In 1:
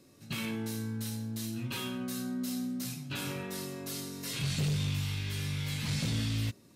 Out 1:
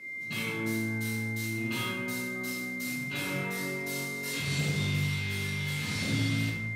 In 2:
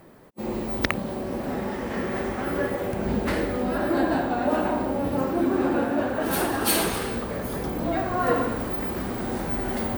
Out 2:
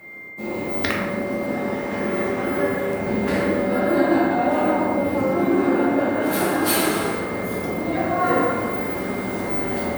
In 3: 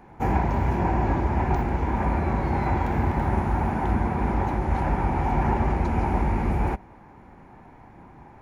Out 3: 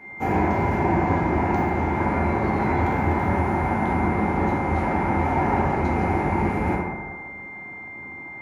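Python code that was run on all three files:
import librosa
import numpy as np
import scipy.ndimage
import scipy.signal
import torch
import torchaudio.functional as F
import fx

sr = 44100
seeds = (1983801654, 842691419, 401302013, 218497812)

y = scipy.signal.sosfilt(scipy.signal.butter(2, 120.0, 'highpass', fs=sr, output='sos'), x)
y = y + 10.0 ** (-45.0 / 20.0) * np.sin(2.0 * np.pi * 2100.0 * np.arange(len(y)) / sr)
y = fx.rev_plate(y, sr, seeds[0], rt60_s=1.5, hf_ratio=0.4, predelay_ms=0, drr_db=-3.5)
y = F.gain(torch.from_numpy(y), -1.5).numpy()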